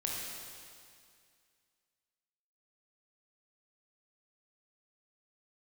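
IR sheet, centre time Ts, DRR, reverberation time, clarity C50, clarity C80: 123 ms, −3.0 dB, 2.2 s, −1.0 dB, 0.5 dB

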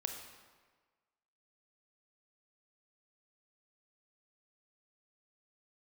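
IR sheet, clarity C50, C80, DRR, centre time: 5.5 dB, 7.0 dB, 4.0 dB, 36 ms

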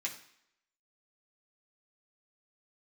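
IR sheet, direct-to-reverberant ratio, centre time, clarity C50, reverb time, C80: −3.5 dB, 16 ms, 10.5 dB, 0.70 s, 13.5 dB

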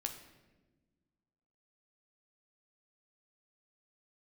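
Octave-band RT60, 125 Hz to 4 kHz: 2.0, 2.1, 1.5, 1.0, 1.0, 0.80 seconds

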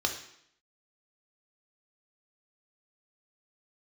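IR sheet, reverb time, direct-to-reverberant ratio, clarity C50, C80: 0.70 s, 3.5 dB, 8.5 dB, 11.5 dB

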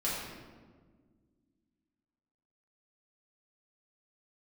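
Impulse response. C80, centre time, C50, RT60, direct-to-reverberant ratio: 2.0 dB, 87 ms, −0.5 dB, 1.6 s, −8.0 dB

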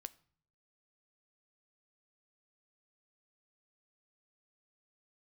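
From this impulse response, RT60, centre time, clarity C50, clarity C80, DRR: 0.55 s, 3 ms, 21.5 dB, 25.0 dB, 14.0 dB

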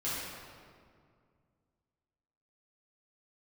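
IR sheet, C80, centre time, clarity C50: −0.5 dB, 130 ms, −3.0 dB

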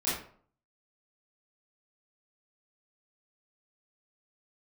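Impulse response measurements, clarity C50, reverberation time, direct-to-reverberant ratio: 1.5 dB, 0.50 s, −11.5 dB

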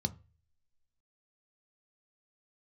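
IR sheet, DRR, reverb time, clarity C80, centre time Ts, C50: 9.0 dB, 0.35 s, 27.0 dB, 3 ms, 22.0 dB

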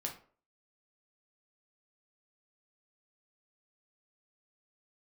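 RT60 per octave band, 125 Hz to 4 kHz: 0.40, 0.45, 0.50, 0.45, 0.35, 0.25 seconds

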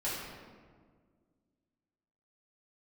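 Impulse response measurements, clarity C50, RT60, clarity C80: −0.5 dB, 1.7 s, 1.5 dB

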